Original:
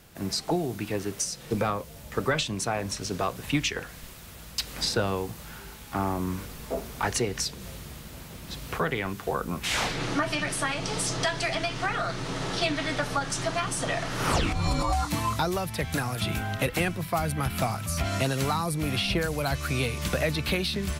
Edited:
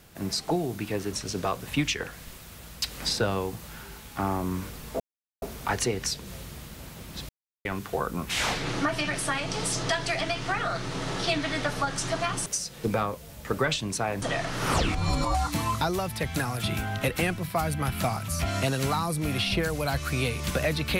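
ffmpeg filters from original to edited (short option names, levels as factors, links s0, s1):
-filter_complex "[0:a]asplit=7[s0][s1][s2][s3][s4][s5][s6];[s0]atrim=end=1.132[s7];[s1]atrim=start=2.888:end=6.76,asetpts=PTS-STARTPTS,afade=t=out:st=3.868:d=0.004:c=hsin,apad=pad_dur=0.42[s8];[s2]atrim=start=6.76:end=8.63,asetpts=PTS-STARTPTS,afade=t=in:d=0.004:c=hsin,afade=t=out:st=1.866:d=0.004:c=hsin[s9];[s3]atrim=start=8.63:end=8.99,asetpts=PTS-STARTPTS,volume=0[s10];[s4]atrim=start=8.99:end=13.802,asetpts=PTS-STARTPTS,afade=t=in:d=0.004:c=hsin[s11];[s5]atrim=start=1.128:end=2.892[s12];[s6]atrim=start=13.798[s13];[s8][s9][s10][s11]concat=n=4:v=0:a=1[s14];[s7][s14]acrossfade=d=0.004:c1=hsin:c2=hsin[s15];[s15][s12]acrossfade=d=0.004:c1=hsin:c2=hsin[s16];[s16][s13]acrossfade=d=0.004:c1=hsin:c2=hsin"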